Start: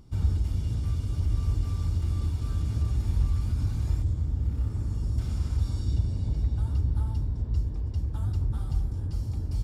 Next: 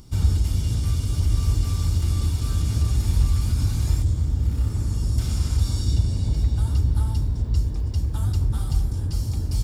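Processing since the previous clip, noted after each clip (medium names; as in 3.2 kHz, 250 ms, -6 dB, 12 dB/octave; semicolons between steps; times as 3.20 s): treble shelf 3.1 kHz +11.5 dB; trim +5.5 dB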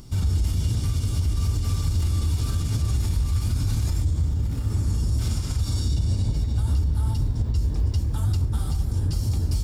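peak limiter -19 dBFS, peak gain reduction 10.5 dB; flange 1.1 Hz, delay 6.8 ms, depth 7.1 ms, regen -55%; trim +7 dB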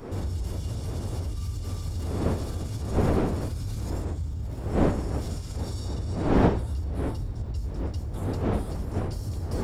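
wind noise 400 Hz -22 dBFS; trim -8.5 dB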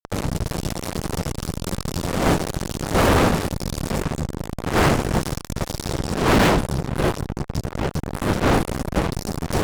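Chebyshev shaper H 7 -18 dB, 8 -15 dB, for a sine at -7 dBFS; fuzz box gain 36 dB, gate -38 dBFS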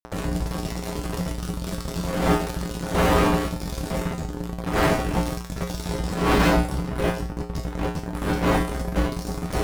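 feedback comb 59 Hz, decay 0.43 s, harmonics odd, mix 90%; in parallel at -10 dB: sample-rate reducer 11 kHz; on the sum: trim +6 dB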